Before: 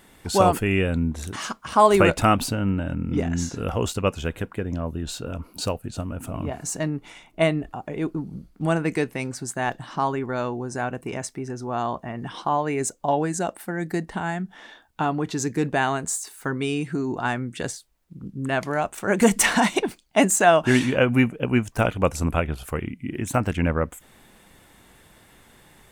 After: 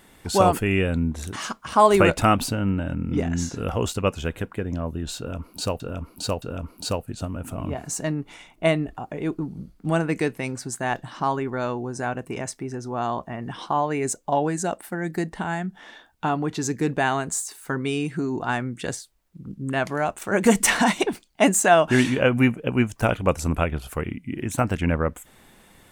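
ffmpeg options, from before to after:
ffmpeg -i in.wav -filter_complex "[0:a]asplit=3[link_01][link_02][link_03];[link_01]atrim=end=5.802[link_04];[link_02]atrim=start=5.178:end=5.802[link_05];[link_03]atrim=start=5.178[link_06];[link_04][link_05]acrossfade=duration=0.004:curve1=hsin:curve2=hsin[link_07];[link_07][link_06]acrossfade=duration=0.004:curve1=hsin:curve2=hsin" out.wav

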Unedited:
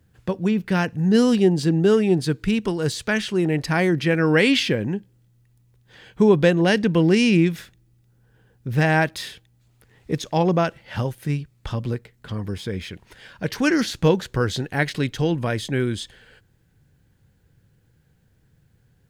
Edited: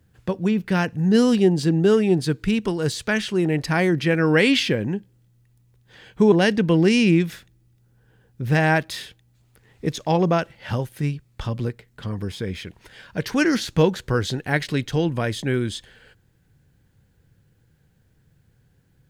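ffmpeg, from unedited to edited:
ffmpeg -i in.wav -filter_complex "[0:a]asplit=2[link_01][link_02];[link_01]atrim=end=6.322[link_03];[link_02]atrim=start=6.578[link_04];[link_03][link_04]acrossfade=duration=0.004:curve1=hsin:curve2=hsin" out.wav

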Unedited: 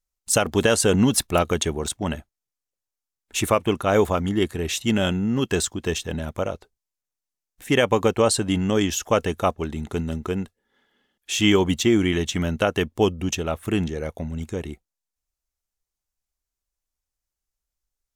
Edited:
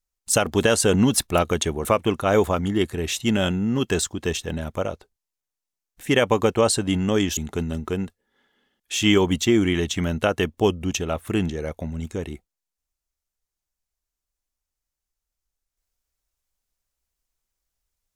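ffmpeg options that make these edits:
ffmpeg -i in.wav -filter_complex "[0:a]asplit=3[link_01][link_02][link_03];[link_01]atrim=end=1.852[link_04];[link_02]atrim=start=3.458:end=8.982[link_05];[link_03]atrim=start=9.748[link_06];[link_04][link_05]acrossfade=duration=0.004:curve1=hsin:curve2=hsin[link_07];[link_07][link_06]acrossfade=duration=0.004:curve1=hsin:curve2=hsin" out.wav

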